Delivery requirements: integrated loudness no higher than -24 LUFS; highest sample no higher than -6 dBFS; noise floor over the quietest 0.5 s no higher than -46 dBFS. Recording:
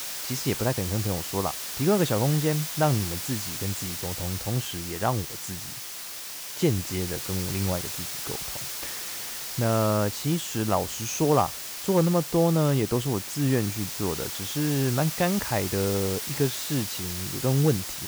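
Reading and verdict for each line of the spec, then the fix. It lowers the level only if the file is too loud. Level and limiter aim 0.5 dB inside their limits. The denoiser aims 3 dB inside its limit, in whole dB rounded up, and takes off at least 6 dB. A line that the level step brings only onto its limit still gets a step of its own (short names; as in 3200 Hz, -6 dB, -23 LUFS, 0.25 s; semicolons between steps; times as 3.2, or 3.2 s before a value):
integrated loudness -26.5 LUFS: OK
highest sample -10.0 dBFS: OK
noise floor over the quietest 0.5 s -38 dBFS: fail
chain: denoiser 11 dB, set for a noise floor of -38 dBFS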